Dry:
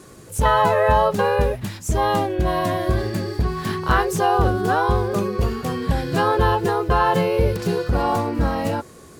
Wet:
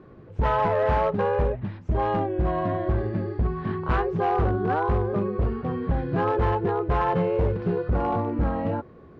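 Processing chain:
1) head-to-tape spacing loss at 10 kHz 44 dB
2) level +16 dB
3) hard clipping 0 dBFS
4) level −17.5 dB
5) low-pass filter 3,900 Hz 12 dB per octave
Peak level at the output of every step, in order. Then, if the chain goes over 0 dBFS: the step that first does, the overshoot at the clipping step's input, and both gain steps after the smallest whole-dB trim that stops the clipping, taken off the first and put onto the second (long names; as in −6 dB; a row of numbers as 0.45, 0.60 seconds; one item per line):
−8.0, +8.0, 0.0, −17.5, −17.0 dBFS
step 2, 8.0 dB
step 2 +8 dB, step 4 −9.5 dB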